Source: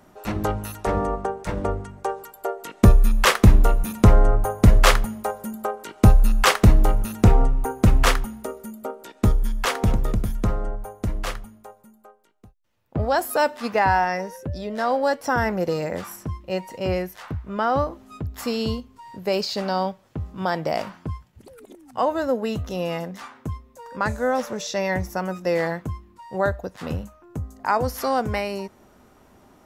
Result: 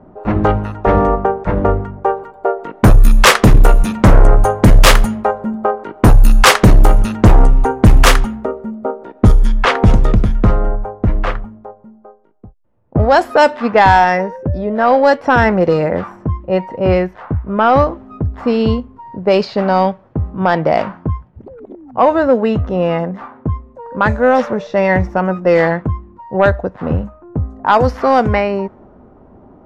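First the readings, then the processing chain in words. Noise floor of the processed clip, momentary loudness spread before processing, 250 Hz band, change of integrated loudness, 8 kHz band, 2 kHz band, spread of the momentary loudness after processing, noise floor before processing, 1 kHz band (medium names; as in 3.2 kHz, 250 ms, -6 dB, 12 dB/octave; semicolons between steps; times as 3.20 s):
-44 dBFS, 17 LU, +9.5 dB, +9.0 dB, +7.5 dB, +9.5 dB, 13 LU, -55 dBFS, +10.5 dB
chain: level-controlled noise filter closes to 730 Hz, open at -12 dBFS; sine folder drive 7 dB, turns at -2.5 dBFS; trim +1 dB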